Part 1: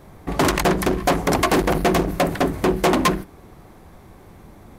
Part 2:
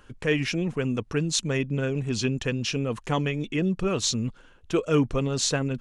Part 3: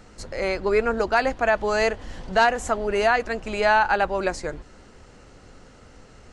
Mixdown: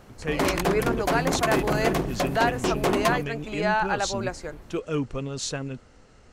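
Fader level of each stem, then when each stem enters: -7.0 dB, -5.5 dB, -5.5 dB; 0.00 s, 0.00 s, 0.00 s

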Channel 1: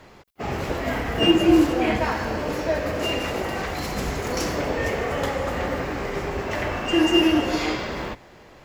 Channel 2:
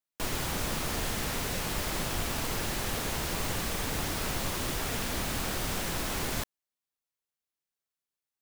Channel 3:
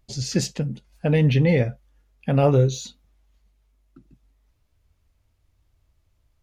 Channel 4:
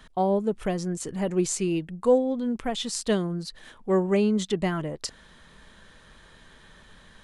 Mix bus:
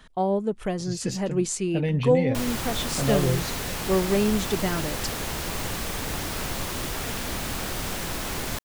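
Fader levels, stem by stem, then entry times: mute, +2.0 dB, -7.0 dB, -0.5 dB; mute, 2.15 s, 0.70 s, 0.00 s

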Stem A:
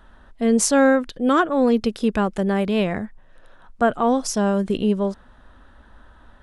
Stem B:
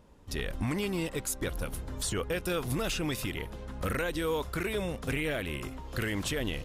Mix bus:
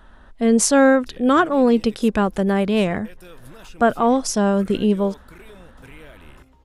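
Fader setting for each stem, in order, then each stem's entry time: +2.0 dB, -12.5 dB; 0.00 s, 0.75 s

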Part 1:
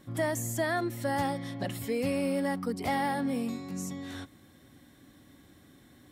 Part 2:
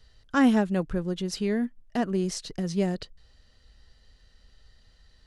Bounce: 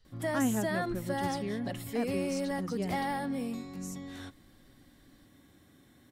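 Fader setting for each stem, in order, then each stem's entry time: -3.5 dB, -9.5 dB; 0.05 s, 0.00 s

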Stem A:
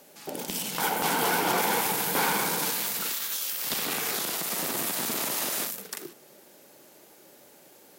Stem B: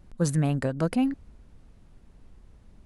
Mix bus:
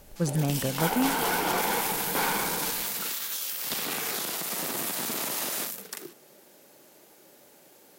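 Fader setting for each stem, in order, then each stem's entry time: -1.5 dB, -2.5 dB; 0.00 s, 0.00 s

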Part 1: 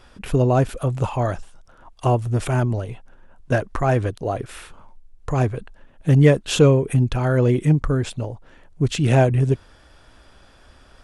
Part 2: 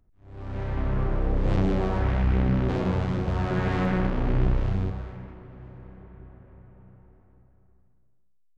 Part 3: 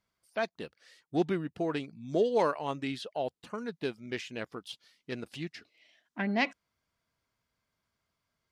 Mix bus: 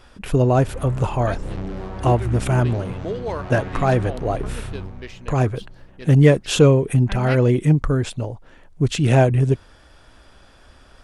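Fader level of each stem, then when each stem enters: +1.0 dB, -6.0 dB, -1.5 dB; 0.00 s, 0.00 s, 0.90 s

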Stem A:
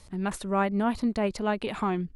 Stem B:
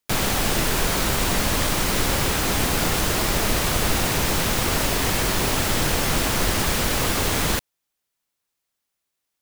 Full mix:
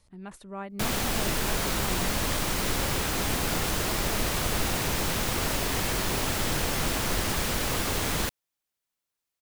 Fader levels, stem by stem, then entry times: -12.0 dB, -6.0 dB; 0.00 s, 0.70 s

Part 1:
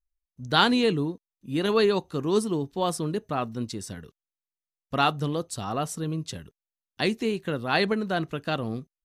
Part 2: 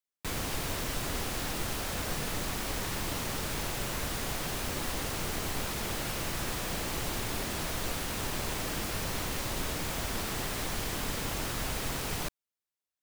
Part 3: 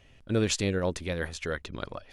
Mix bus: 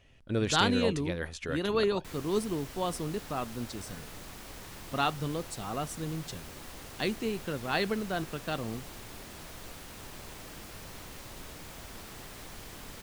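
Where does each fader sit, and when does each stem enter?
-6.0 dB, -11.5 dB, -3.5 dB; 0.00 s, 1.80 s, 0.00 s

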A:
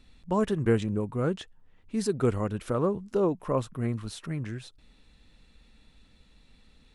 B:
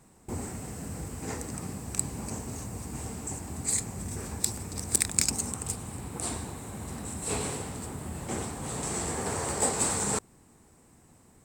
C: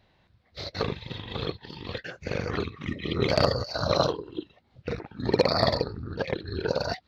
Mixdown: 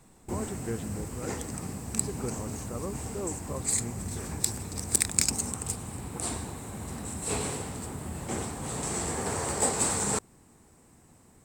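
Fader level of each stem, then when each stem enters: -11.0 dB, +0.5 dB, mute; 0.00 s, 0.00 s, mute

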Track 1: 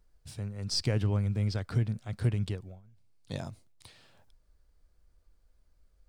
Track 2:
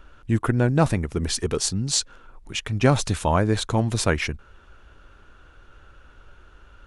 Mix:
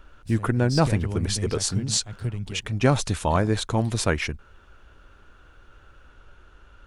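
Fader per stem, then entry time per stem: -1.0 dB, -1.5 dB; 0.00 s, 0.00 s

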